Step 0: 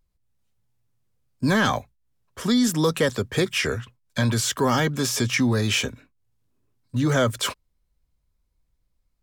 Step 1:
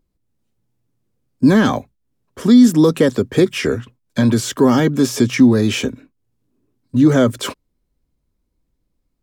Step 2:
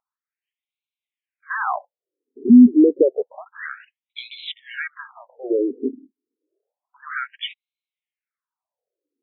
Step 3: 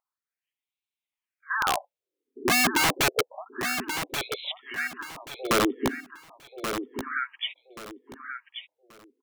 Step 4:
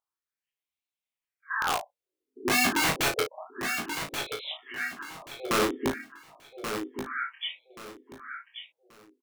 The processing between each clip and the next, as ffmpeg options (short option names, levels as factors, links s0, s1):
-af "equalizer=f=290:w=0.8:g=13"
-af "afftfilt=real='re*between(b*sr/1024,300*pow(3000/300,0.5+0.5*sin(2*PI*0.29*pts/sr))/1.41,300*pow(3000/300,0.5+0.5*sin(2*PI*0.29*pts/sr))*1.41)':imag='im*between(b*sr/1024,300*pow(3000/300,0.5+0.5*sin(2*PI*0.29*pts/sr))/1.41,300*pow(3000/300,0.5+0.5*sin(2*PI*0.29*pts/sr))*1.41)':win_size=1024:overlap=0.75"
-af "aeval=exprs='(mod(5.31*val(0)+1,2)-1)/5.31':c=same,aecho=1:1:1131|2262|3393:0.398|0.107|0.029,volume=0.794"
-filter_complex "[0:a]flanger=delay=19:depth=4.7:speed=0.45,asplit=2[s0][s1];[s1]adelay=35,volume=0.447[s2];[s0][s2]amix=inputs=2:normalize=0"